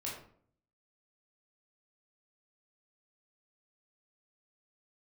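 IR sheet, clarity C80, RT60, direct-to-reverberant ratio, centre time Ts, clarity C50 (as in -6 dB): 7.5 dB, 0.55 s, -5.0 dB, 43 ms, 3.5 dB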